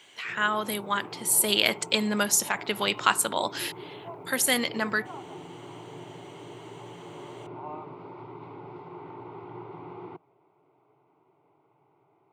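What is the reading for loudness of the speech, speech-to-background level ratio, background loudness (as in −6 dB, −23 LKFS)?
−25.5 LKFS, 17.5 dB, −43.0 LKFS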